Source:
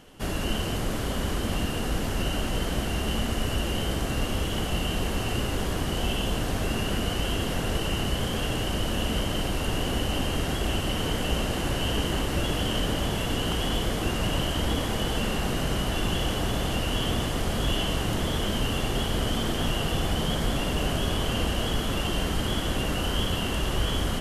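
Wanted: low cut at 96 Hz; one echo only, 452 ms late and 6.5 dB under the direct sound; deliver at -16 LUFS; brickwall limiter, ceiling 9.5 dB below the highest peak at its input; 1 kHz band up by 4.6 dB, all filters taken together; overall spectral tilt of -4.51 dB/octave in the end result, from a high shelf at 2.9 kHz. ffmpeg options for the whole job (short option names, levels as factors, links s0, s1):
-af "highpass=96,equalizer=f=1000:t=o:g=6.5,highshelf=f=2900:g=-3,alimiter=level_in=1.06:limit=0.0631:level=0:latency=1,volume=0.944,aecho=1:1:452:0.473,volume=6.31"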